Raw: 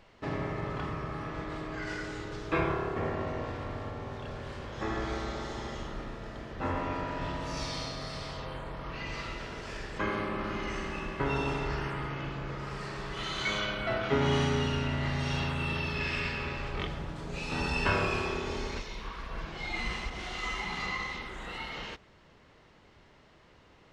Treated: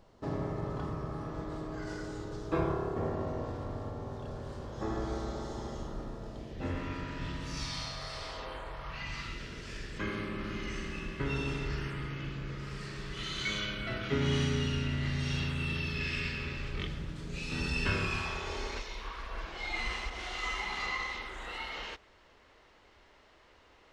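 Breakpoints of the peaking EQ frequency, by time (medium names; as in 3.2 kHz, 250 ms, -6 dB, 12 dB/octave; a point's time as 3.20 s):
peaking EQ -13.5 dB 1.4 oct
6.21 s 2.3 kHz
6.87 s 740 Hz
7.52 s 740 Hz
8.45 s 120 Hz
9.41 s 800 Hz
17.97 s 800 Hz
18.64 s 150 Hz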